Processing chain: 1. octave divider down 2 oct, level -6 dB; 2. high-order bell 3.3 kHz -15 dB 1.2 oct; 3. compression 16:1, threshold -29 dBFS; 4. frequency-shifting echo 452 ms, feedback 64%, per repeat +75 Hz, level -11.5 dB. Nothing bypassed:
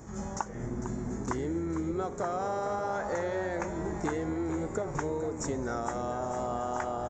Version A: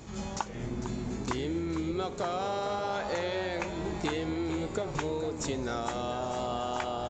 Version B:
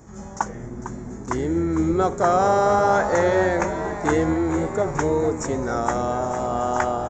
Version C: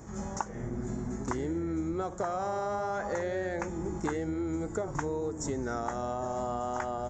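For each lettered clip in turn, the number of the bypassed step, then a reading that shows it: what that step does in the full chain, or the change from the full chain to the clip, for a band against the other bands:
2, 4 kHz band +12.0 dB; 3, mean gain reduction 8.5 dB; 4, echo-to-direct -9.0 dB to none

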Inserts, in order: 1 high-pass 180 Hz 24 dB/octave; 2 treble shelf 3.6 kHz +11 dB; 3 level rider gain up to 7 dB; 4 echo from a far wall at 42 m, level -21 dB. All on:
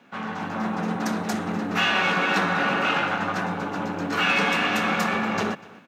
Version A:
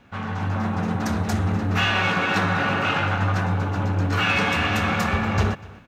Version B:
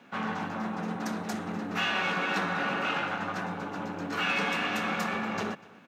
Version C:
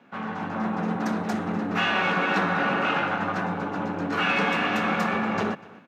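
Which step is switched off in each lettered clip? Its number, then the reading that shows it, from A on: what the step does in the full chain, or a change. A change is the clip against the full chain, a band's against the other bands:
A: 1, 125 Hz band +11.5 dB; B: 3, momentary loudness spread change -1 LU; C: 2, 4 kHz band -4.5 dB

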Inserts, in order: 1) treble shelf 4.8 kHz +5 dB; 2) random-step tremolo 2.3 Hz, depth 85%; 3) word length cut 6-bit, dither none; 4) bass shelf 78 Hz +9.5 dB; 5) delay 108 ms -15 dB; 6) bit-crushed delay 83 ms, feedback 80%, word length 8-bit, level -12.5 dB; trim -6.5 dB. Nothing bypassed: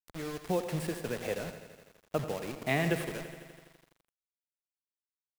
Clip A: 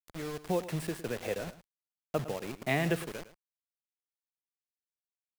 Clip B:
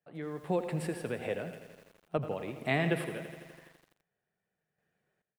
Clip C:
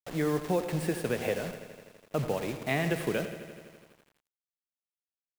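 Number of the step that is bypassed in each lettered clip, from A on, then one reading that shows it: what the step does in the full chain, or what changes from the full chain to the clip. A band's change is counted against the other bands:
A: 6, momentary loudness spread change -6 LU; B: 3, distortion -13 dB; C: 2, crest factor change -3.5 dB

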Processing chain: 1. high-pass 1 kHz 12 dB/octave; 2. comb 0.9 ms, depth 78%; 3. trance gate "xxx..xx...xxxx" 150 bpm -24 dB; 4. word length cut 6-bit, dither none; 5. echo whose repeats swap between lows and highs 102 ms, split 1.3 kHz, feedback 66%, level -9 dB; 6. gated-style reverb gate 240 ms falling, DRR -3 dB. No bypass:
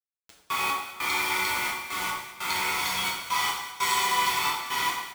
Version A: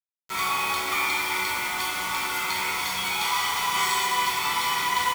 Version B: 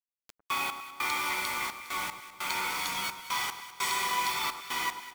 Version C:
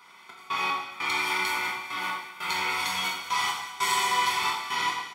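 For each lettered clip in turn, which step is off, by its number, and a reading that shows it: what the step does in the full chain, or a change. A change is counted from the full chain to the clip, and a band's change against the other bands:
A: 3, crest factor change -2.5 dB; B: 6, loudness change -5.0 LU; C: 4, distortion -9 dB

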